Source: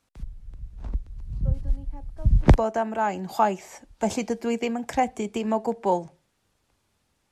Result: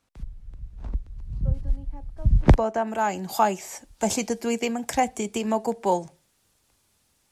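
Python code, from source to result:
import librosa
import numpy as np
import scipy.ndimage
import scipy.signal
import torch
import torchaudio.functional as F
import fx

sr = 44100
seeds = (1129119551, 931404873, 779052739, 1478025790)

y = fx.high_shelf(x, sr, hz=4600.0, db=fx.steps((0.0, -2.0), (2.86, 12.0)))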